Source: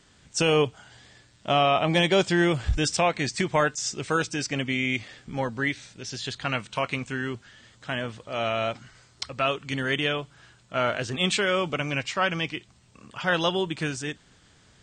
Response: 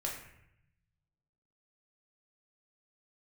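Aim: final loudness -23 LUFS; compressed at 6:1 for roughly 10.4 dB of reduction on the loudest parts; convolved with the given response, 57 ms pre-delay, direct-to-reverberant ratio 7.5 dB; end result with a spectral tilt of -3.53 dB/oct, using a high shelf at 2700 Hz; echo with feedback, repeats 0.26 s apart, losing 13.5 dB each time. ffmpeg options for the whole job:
-filter_complex "[0:a]highshelf=f=2.7k:g=3,acompressor=threshold=-28dB:ratio=6,aecho=1:1:260|520:0.211|0.0444,asplit=2[a][b];[1:a]atrim=start_sample=2205,adelay=57[c];[b][c]afir=irnorm=-1:irlink=0,volume=-9.5dB[d];[a][d]amix=inputs=2:normalize=0,volume=8.5dB"

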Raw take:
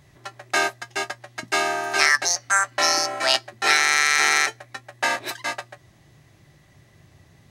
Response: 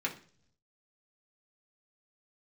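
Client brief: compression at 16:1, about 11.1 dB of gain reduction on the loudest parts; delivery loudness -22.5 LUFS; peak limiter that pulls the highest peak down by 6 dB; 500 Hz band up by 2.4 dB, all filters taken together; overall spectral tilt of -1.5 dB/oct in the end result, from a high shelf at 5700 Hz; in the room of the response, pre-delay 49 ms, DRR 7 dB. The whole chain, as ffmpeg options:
-filter_complex "[0:a]equalizer=f=500:t=o:g=3.5,highshelf=f=5.7k:g=-6,acompressor=threshold=-24dB:ratio=16,alimiter=limit=-19dB:level=0:latency=1,asplit=2[a][b];[1:a]atrim=start_sample=2205,adelay=49[c];[b][c]afir=irnorm=-1:irlink=0,volume=-12dB[d];[a][d]amix=inputs=2:normalize=0,volume=8.5dB"

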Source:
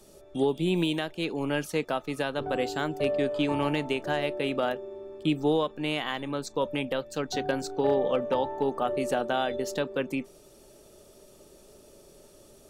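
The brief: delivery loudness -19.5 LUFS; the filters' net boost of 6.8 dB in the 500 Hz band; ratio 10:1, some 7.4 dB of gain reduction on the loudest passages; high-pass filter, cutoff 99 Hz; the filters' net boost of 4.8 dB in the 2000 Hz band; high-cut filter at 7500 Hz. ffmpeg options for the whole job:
-af "highpass=99,lowpass=7.5k,equalizer=f=500:t=o:g=8,equalizer=f=2k:t=o:g=6,acompressor=threshold=-22dB:ratio=10,volume=8.5dB"

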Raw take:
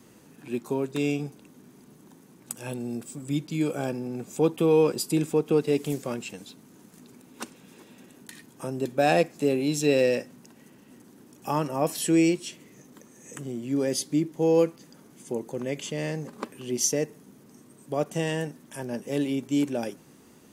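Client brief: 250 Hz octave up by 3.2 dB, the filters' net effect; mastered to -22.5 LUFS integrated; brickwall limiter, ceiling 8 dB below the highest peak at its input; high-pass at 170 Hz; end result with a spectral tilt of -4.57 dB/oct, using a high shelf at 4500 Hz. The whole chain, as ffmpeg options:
-af "highpass=170,equalizer=f=250:t=o:g=5,highshelf=f=4.5k:g=4,volume=5.5dB,alimiter=limit=-10.5dB:level=0:latency=1"

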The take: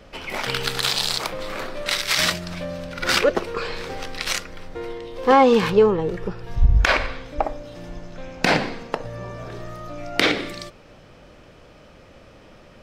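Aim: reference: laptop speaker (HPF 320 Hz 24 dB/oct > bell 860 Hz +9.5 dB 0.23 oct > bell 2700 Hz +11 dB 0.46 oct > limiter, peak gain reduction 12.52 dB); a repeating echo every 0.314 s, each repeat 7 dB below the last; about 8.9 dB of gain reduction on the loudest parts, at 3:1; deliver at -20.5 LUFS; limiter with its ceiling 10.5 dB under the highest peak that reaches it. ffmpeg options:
-af "acompressor=threshold=-22dB:ratio=3,alimiter=limit=-16dB:level=0:latency=1,highpass=f=320:w=0.5412,highpass=f=320:w=1.3066,equalizer=f=860:t=o:w=0.23:g=9.5,equalizer=f=2.7k:t=o:w=0.46:g=11,aecho=1:1:314|628|942|1256|1570:0.447|0.201|0.0905|0.0407|0.0183,volume=11dB,alimiter=limit=-11dB:level=0:latency=1"

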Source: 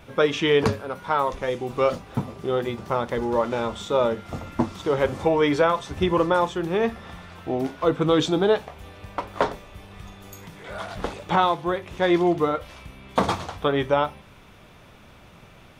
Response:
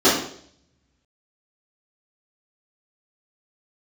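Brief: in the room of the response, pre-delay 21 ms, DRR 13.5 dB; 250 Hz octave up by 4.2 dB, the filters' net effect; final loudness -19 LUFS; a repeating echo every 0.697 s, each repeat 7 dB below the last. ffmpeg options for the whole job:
-filter_complex "[0:a]equalizer=f=250:t=o:g=6,aecho=1:1:697|1394|2091|2788|3485:0.447|0.201|0.0905|0.0407|0.0183,asplit=2[a][b];[1:a]atrim=start_sample=2205,adelay=21[c];[b][c]afir=irnorm=-1:irlink=0,volume=-36.5dB[d];[a][d]amix=inputs=2:normalize=0,volume=2.5dB"

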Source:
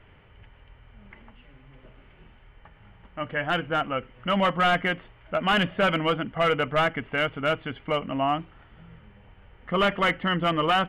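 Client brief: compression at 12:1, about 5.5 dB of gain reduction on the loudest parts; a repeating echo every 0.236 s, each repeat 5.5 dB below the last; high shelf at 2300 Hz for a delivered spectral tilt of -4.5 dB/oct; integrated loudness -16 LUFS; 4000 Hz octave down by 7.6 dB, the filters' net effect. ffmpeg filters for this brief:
-af "highshelf=f=2.3k:g=-6.5,equalizer=f=4k:t=o:g=-6,acompressor=threshold=-25dB:ratio=12,aecho=1:1:236|472|708|944|1180|1416|1652:0.531|0.281|0.149|0.079|0.0419|0.0222|0.0118,volume=14dB"

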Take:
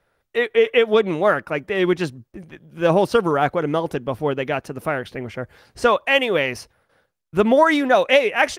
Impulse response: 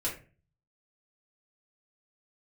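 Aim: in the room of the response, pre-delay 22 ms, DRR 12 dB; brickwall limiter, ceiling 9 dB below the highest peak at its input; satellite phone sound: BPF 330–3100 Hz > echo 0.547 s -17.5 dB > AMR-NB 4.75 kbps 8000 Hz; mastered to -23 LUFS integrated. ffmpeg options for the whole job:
-filter_complex "[0:a]alimiter=limit=-11dB:level=0:latency=1,asplit=2[a][b];[1:a]atrim=start_sample=2205,adelay=22[c];[b][c]afir=irnorm=-1:irlink=0,volume=-17dB[d];[a][d]amix=inputs=2:normalize=0,highpass=330,lowpass=3.1k,aecho=1:1:547:0.133,volume=2dB" -ar 8000 -c:a libopencore_amrnb -b:a 4750

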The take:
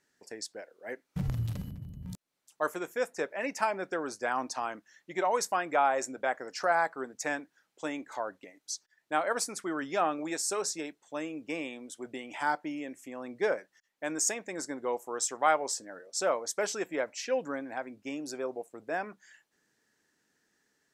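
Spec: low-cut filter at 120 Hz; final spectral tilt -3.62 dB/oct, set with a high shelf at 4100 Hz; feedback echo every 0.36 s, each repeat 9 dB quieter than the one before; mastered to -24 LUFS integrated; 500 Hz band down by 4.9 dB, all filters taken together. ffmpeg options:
-af "highpass=120,equalizer=f=500:t=o:g=-6,highshelf=f=4.1k:g=-7,aecho=1:1:360|720|1080|1440:0.355|0.124|0.0435|0.0152,volume=12dB"

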